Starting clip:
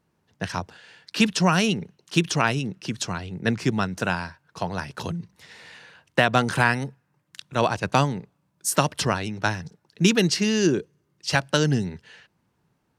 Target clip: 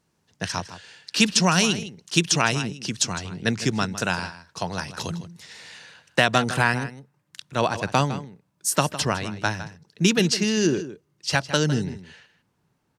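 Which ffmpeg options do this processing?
-filter_complex "[0:a]asetnsamples=n=441:p=0,asendcmd='6.38 equalizer g 2.5',equalizer=f=6.7k:w=0.58:g=9.5,asplit=2[a][b];[b]adelay=157.4,volume=-13dB,highshelf=f=4k:g=-3.54[c];[a][c]amix=inputs=2:normalize=0,volume=-1dB"

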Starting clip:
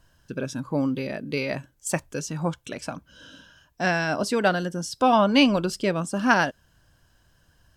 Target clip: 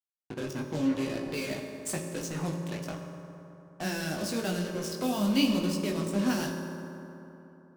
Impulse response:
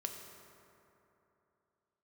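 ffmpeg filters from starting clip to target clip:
-filter_complex "[0:a]acrusher=bits=4:mix=0:aa=0.5,acrossover=split=360|3000[a][b][c];[b]acompressor=threshold=-33dB:ratio=6[d];[a][d][c]amix=inputs=3:normalize=0,flanger=delay=17.5:depth=2.4:speed=0.89[e];[1:a]atrim=start_sample=2205,asetrate=40572,aresample=44100[f];[e][f]afir=irnorm=-1:irlink=0"

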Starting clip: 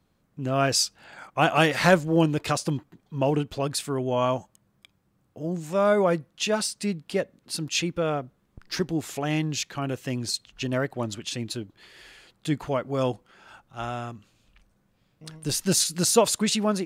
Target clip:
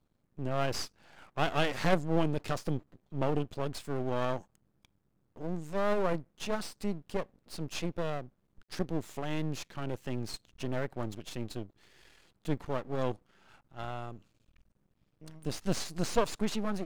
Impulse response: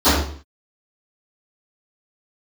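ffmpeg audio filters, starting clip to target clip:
-filter_complex "[0:a]lowshelf=f=450:g=7.5,aeval=exprs='max(val(0),0)':c=same,acrossover=split=6900[a][b];[b]acompressor=threshold=-41dB:ratio=4:attack=1:release=60[c];[a][c]amix=inputs=2:normalize=0,volume=-8dB"

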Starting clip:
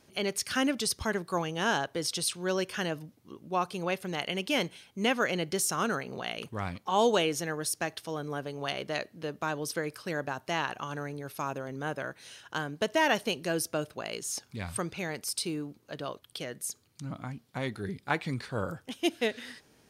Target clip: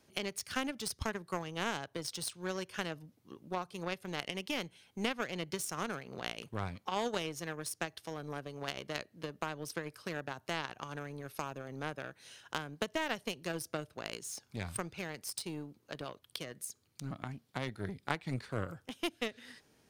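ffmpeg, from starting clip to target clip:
-filter_complex "[0:a]acrossover=split=140[a][b];[b]acompressor=threshold=-40dB:ratio=2.5[c];[a][c]amix=inputs=2:normalize=0,aeval=exprs='0.112*(cos(1*acos(clip(val(0)/0.112,-1,1)))-cos(1*PI/2))+0.0112*(cos(7*acos(clip(val(0)/0.112,-1,1)))-cos(7*PI/2))':c=same,volume=5dB"

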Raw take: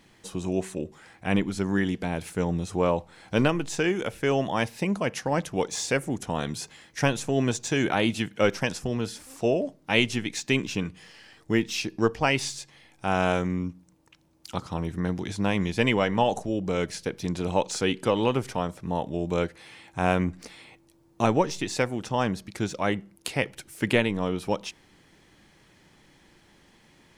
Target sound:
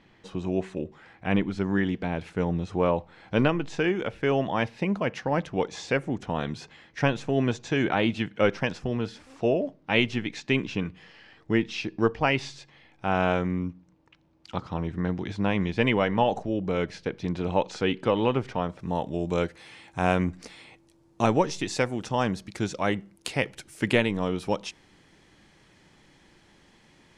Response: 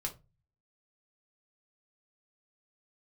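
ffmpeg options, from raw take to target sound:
-af "asetnsamples=n=441:p=0,asendcmd='18.79 lowpass f 9200',lowpass=3.4k"

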